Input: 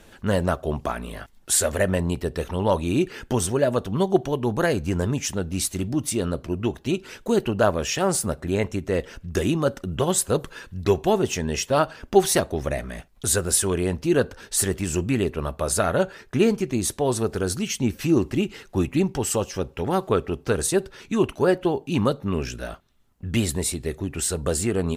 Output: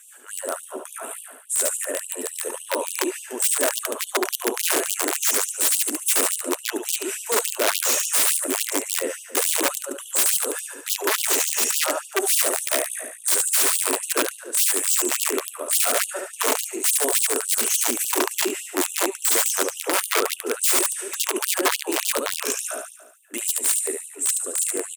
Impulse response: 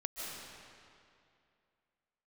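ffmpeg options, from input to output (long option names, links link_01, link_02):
-af "highshelf=frequency=6300:width_type=q:width=3:gain=11.5,areverse,acompressor=threshold=-21dB:ratio=8,areverse,bandreject=frequency=60:width_type=h:width=6,bandreject=frequency=120:width_type=h:width=6,aecho=1:1:72|144|216|288|360|432|504|576|648:0.631|0.379|0.227|0.136|0.0818|0.0491|0.0294|0.0177|0.0106,dynaudnorm=framelen=320:gausssize=17:maxgain=15dB,aeval=exprs='(mod(3.55*val(0)+1,2)-1)/3.55':channel_layout=same,bandreject=frequency=810:width=12,afftfilt=real='re*gte(b*sr/1024,220*pow(2800/220,0.5+0.5*sin(2*PI*3.5*pts/sr)))':imag='im*gte(b*sr/1024,220*pow(2800/220,0.5+0.5*sin(2*PI*3.5*pts/sr)))':win_size=1024:overlap=0.75,volume=-1.5dB"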